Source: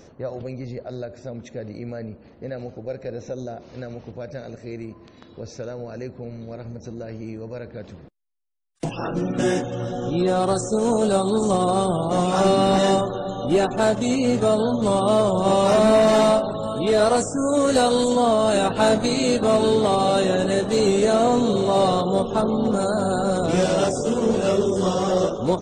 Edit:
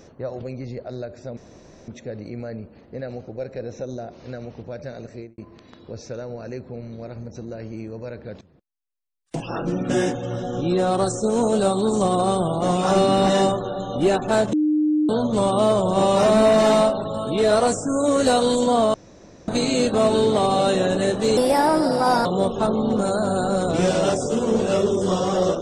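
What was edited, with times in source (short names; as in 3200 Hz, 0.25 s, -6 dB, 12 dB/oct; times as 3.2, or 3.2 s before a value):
1.37 insert room tone 0.51 s
4.62–4.87 studio fade out
7.9–9.1 fade in, from -17 dB
14.02–14.58 bleep 304 Hz -16 dBFS
18.43–18.97 room tone
20.86–22 speed 129%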